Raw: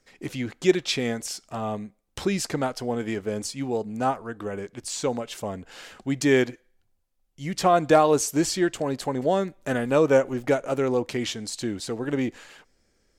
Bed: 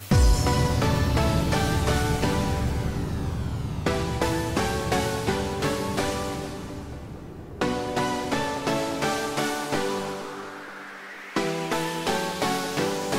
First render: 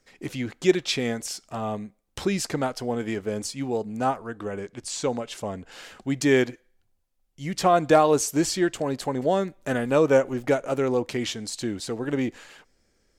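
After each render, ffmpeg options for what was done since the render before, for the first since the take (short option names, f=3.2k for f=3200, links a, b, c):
-filter_complex "[0:a]asettb=1/sr,asplit=3[a][b][c];[a]atrim=end=4.364[d];[b]atrim=start=4.36:end=5.72,asetpts=PTS-STARTPTS,afade=t=in:d=0.004:c=qsin,afade=t=out:st=1.356:d=0.004:c=qsin,lowpass=11k[e];[c]atrim=start=5.716[f];[d][e]acrossfade=d=0.004:c1=hsin:c2=qsin[g];[g][f]acrossfade=d=0.004:c1=qsin:c2=hsin"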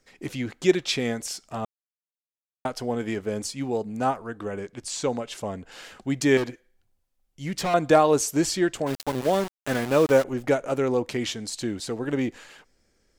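-filter_complex "[0:a]asettb=1/sr,asplit=3[a][b][c];[a]atrim=end=6.374[d];[b]atrim=start=6.37:end=7.74,asetpts=PTS-STARTPTS,afade=t=in:d=0.004:c=qsin,afade=t=out:st=1.366:d=0.004:c=qsin,volume=23.5dB,asoftclip=hard,volume=-23.5dB[e];[c]atrim=start=7.736[f];[d][e]acrossfade=d=0.004:c1=hsin:c2=qsin[g];[g][f]acrossfade=d=0.004:c1=qsin:c2=hsin,asplit=3[h][i][j];[h]afade=t=out:st=8.86:d=0.02[k];[i]aeval=exprs='val(0)*gte(abs(val(0)),0.0398)':c=same,afade=t=in:st=8.86:d=0.02,afade=t=out:st=10.23:d=0.02[l];[j]afade=t=in:st=10.23:d=0.02[m];[k][l][m]amix=inputs=3:normalize=0,asplit=3[n][o][p];[n]atrim=end=1.65,asetpts=PTS-STARTPTS,afade=t=out:st=1.646:d=0.004:c=hsin[q];[o]atrim=start=1.65:end=2.65,asetpts=PTS-STARTPTS,volume=0[r];[p]atrim=start=2.65,asetpts=PTS-STARTPTS,afade=t=in:d=0.004:c=hsin[s];[q][r][s]concat=n=3:v=0:a=1"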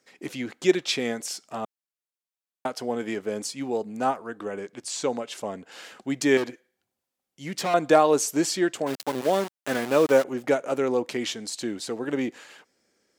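-af "highpass=210"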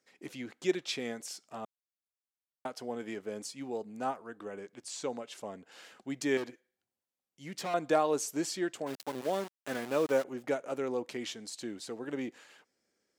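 -af "volume=-9.5dB"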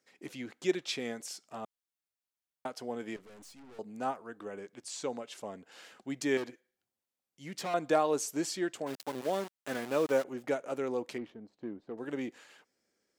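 -filter_complex "[0:a]asettb=1/sr,asplit=3[a][b][c];[a]atrim=end=3.164[d];[b]atrim=start=3.16:end=3.79,asetpts=PTS-STARTPTS,afade=t=in:d=0.004:c=qsin,afade=t=out:st=0.626:d=0.004:c=qsin,aeval=exprs='(tanh(398*val(0)+0.45)-tanh(0.45))/398':c=same[e];[c]atrim=start=3.786[f];[d][e]acrossfade=d=0.004:c1=hsin:c2=qsin[g];[g][f]acrossfade=d=0.004:c1=qsin:c2=hsin,asettb=1/sr,asplit=3[h][i][j];[h]atrim=end=11.184[k];[i]atrim=start=11.18:end=11.98,asetpts=PTS-STARTPTS,afade=t=in:d=0.004:c=qsin,afade=t=out:st=0.796:d=0.004:c=qsin,adynamicsmooth=sensitivity=2.5:basefreq=650[l];[j]atrim=start=11.976[m];[k][l]acrossfade=d=0.004:c1=hsin:c2=qsin[n];[n][m]acrossfade=d=0.004:c1=qsin:c2=hsin"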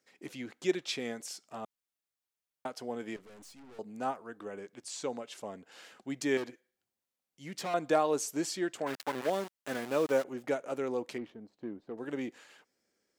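-filter_complex "[0:a]asettb=1/sr,asplit=3[a][b][c];[a]atrim=end=8.784[d];[b]atrim=start=8.78:end=9.3,asetpts=PTS-STARTPTS,afade=t=in:d=0.004:c=qsin,afade=t=out:st=0.516:d=0.004:c=qsin,equalizer=f=1.6k:w=0.75:g=9[e];[c]atrim=start=9.296[f];[d][e]acrossfade=d=0.004:c1=hsin:c2=qsin[g];[g][f]acrossfade=d=0.004:c1=qsin:c2=hsin"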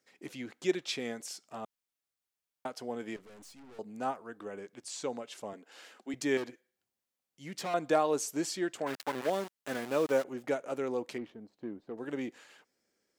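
-filter_complex "[0:a]asettb=1/sr,asplit=3[a][b][c];[a]atrim=end=5.534[d];[b]atrim=start=5.53:end=6.14,asetpts=PTS-STARTPTS,afade=t=in:d=0.004:c=qsin,afade=t=out:st=0.606:d=0.004:c=qsin,highpass=f=230:w=0.5412,highpass=f=230:w=1.3066[e];[c]atrim=start=6.136[f];[d][e]acrossfade=d=0.004:c1=hsin:c2=qsin[g];[g][f]acrossfade=d=0.004:c1=qsin:c2=hsin"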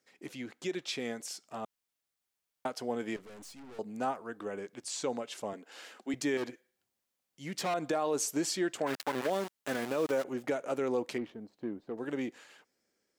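-af "alimiter=level_in=1.5dB:limit=-24dB:level=0:latency=1:release=65,volume=-1.5dB,dynaudnorm=f=480:g=7:m=3.5dB"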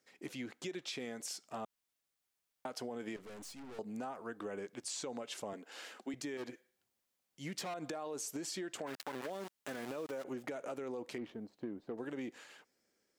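-af "alimiter=level_in=5dB:limit=-24dB:level=0:latency=1:release=88,volume=-5dB,acompressor=threshold=-38dB:ratio=6"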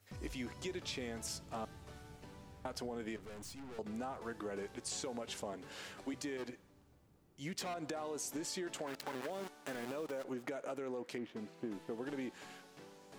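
-filter_complex "[1:a]volume=-30.5dB[a];[0:a][a]amix=inputs=2:normalize=0"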